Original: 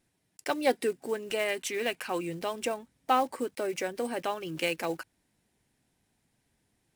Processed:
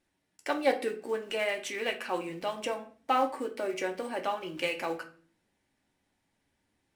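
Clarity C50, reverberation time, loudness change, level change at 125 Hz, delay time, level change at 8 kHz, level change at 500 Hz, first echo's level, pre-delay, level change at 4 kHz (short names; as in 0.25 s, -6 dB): 12.0 dB, 0.45 s, -1.0 dB, -5.5 dB, none, -5.5 dB, -0.5 dB, none, 3 ms, -1.0 dB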